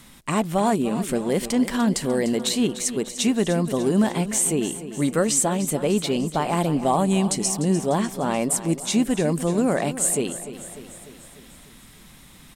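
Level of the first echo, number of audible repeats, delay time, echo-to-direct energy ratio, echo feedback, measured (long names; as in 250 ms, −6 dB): −13.0 dB, 5, 298 ms, −11.5 dB, 57%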